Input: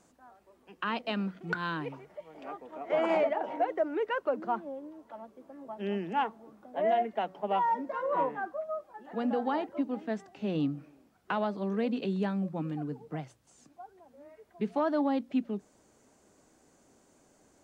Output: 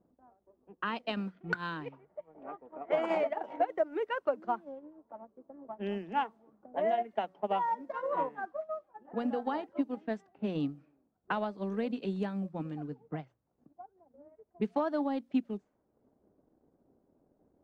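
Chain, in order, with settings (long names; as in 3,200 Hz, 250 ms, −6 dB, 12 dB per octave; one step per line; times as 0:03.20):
low-pass that shuts in the quiet parts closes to 570 Hz, open at −28.5 dBFS
transient designer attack +5 dB, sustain −7 dB
level −4 dB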